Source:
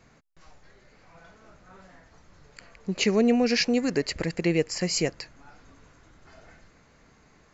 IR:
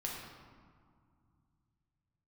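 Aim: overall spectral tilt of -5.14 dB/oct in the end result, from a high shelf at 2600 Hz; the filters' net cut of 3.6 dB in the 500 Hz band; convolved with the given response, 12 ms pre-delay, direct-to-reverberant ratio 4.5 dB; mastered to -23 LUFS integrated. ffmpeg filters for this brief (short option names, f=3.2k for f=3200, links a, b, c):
-filter_complex "[0:a]equalizer=f=500:t=o:g=-4,highshelf=f=2.6k:g=-4.5,asplit=2[a][b];[1:a]atrim=start_sample=2205,adelay=12[c];[b][c]afir=irnorm=-1:irlink=0,volume=-6dB[d];[a][d]amix=inputs=2:normalize=0,volume=2.5dB"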